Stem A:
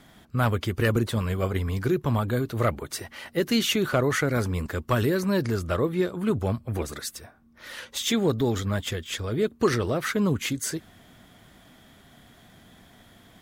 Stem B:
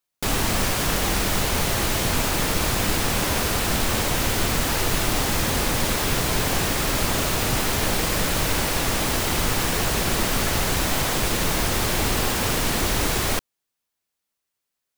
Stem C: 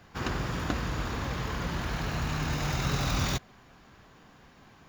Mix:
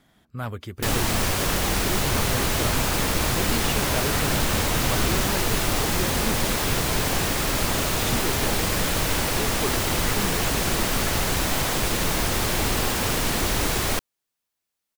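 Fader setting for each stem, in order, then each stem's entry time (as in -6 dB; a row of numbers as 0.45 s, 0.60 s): -8.0 dB, -1.0 dB, -1.5 dB; 0.00 s, 0.60 s, 1.90 s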